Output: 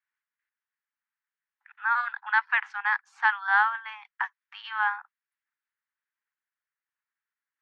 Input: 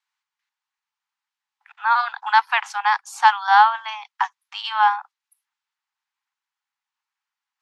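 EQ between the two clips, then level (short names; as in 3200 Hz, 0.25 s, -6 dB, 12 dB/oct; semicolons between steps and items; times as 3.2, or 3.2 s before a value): band-pass 1700 Hz, Q 3; air absorption 51 m; 0.0 dB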